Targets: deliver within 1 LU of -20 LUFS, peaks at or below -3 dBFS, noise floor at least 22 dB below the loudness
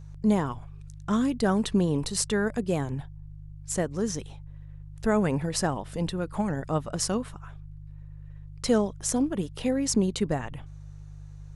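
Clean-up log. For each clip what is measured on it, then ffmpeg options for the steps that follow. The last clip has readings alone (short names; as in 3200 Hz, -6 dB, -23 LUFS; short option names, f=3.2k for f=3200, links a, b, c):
hum 50 Hz; harmonics up to 150 Hz; hum level -41 dBFS; loudness -28.0 LUFS; peak -9.5 dBFS; loudness target -20.0 LUFS
-> -af "bandreject=f=50:t=h:w=4,bandreject=f=100:t=h:w=4,bandreject=f=150:t=h:w=4"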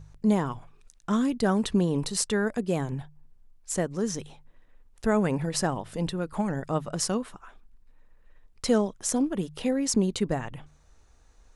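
hum none; loudness -28.0 LUFS; peak -9.5 dBFS; loudness target -20.0 LUFS
-> -af "volume=8dB,alimiter=limit=-3dB:level=0:latency=1"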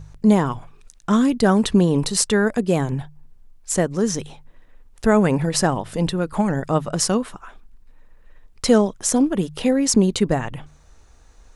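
loudness -20.0 LUFS; peak -3.0 dBFS; noise floor -50 dBFS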